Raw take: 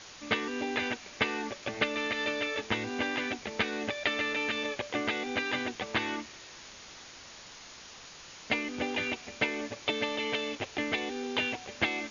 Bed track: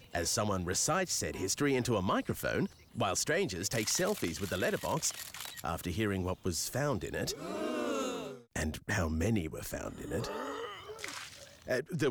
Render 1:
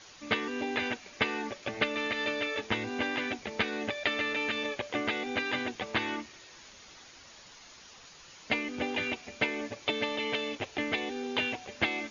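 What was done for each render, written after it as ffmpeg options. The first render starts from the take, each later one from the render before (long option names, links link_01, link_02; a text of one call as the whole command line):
ffmpeg -i in.wav -af "afftdn=noise_reduction=6:noise_floor=-49" out.wav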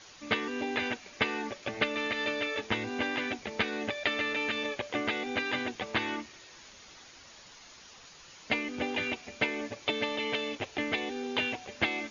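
ffmpeg -i in.wav -af anull out.wav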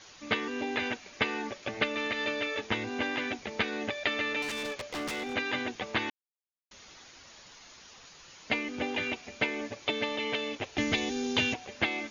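ffmpeg -i in.wav -filter_complex "[0:a]asettb=1/sr,asplit=3[link_01][link_02][link_03];[link_01]atrim=end=4.424[link_04];[link_02]atrim=start=4.42:end=5.34,asetpts=PTS-STARTPTS,afade=type=in:duration=0.004:curve=qsin,afade=type=out:start_time=0.916:duration=0.004:curve=qsin,aeval=exprs='0.0335*(abs(mod(val(0)/0.0335+3,4)-2)-1)':channel_layout=same[link_05];[link_03]atrim=start=5.336[link_06];[link_04][link_05]acrossfade=duration=0.004:curve1=hsin:curve2=qsin[link_07];[link_07][link_06]acrossfade=duration=0.004:curve1=qsin:curve2=hsin,asettb=1/sr,asplit=3[link_08][link_09][link_10];[link_08]atrim=end=10.774[link_11];[link_09]atrim=start=10.77:end=11.54,asetpts=PTS-STARTPTS,afade=type=in:duration=0.004:curve=qsin,afade=type=out:start_time=0.766:duration=0.004:curve=qsin,bass=frequency=250:gain=11,treble=frequency=4000:gain=13[link_12];[link_10]atrim=start=11.536[link_13];[link_11][link_12]acrossfade=duration=0.004:curve1=hsin:curve2=qsin[link_14];[link_14][link_13]acrossfade=duration=0.004:curve1=qsin:curve2=hsin,asplit=3[link_15][link_16][link_17];[link_15]atrim=end=6.1,asetpts=PTS-STARTPTS,afade=type=out:start_time=6.096:duration=0.004:curve=hsin[link_18];[link_16]atrim=start=6.1:end=6.71,asetpts=PTS-STARTPTS,volume=0[link_19];[link_17]atrim=start=6.71,asetpts=PTS-STARTPTS,afade=type=in:duration=0.004:curve=hsin[link_20];[link_18][link_19][link_20]concat=n=3:v=0:a=1" out.wav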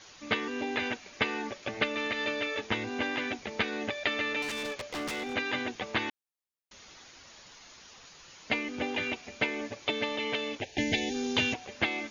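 ffmpeg -i in.wav -filter_complex "[0:a]asplit=3[link_01][link_02][link_03];[link_01]afade=type=out:start_time=10.6:duration=0.02[link_04];[link_02]asuperstop=centerf=1200:order=12:qfactor=1.8,afade=type=in:start_time=10.6:duration=0.02,afade=type=out:start_time=11.13:duration=0.02[link_05];[link_03]afade=type=in:start_time=11.13:duration=0.02[link_06];[link_04][link_05][link_06]amix=inputs=3:normalize=0" out.wav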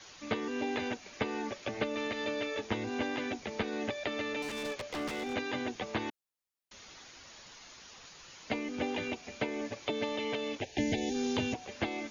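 ffmpeg -i in.wav -filter_complex "[0:a]acrossover=split=230|1000|4500[link_01][link_02][link_03][link_04];[link_03]acompressor=threshold=-41dB:ratio=6[link_05];[link_04]alimiter=level_in=14.5dB:limit=-24dB:level=0:latency=1:release=117,volume=-14.5dB[link_06];[link_01][link_02][link_05][link_06]amix=inputs=4:normalize=0" out.wav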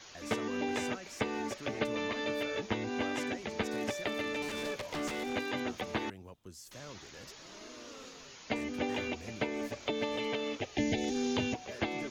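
ffmpeg -i in.wav -i bed.wav -filter_complex "[1:a]volume=-16dB[link_01];[0:a][link_01]amix=inputs=2:normalize=0" out.wav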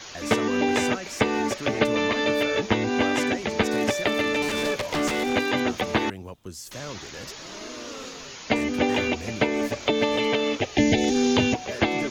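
ffmpeg -i in.wav -af "volume=11.5dB" out.wav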